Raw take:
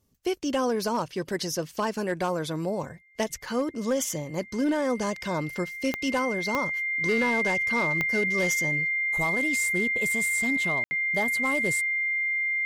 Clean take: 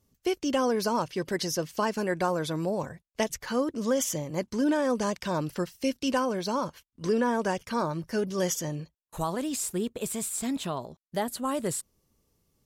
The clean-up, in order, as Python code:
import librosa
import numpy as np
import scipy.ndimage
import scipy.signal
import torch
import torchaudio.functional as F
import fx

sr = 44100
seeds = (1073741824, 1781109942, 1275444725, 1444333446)

y = fx.fix_declip(x, sr, threshold_db=-19.0)
y = fx.fix_declick_ar(y, sr, threshold=10.0)
y = fx.notch(y, sr, hz=2100.0, q=30.0)
y = fx.fix_ambience(y, sr, seeds[0], print_start_s=0.0, print_end_s=0.5, start_s=10.84, end_s=10.91)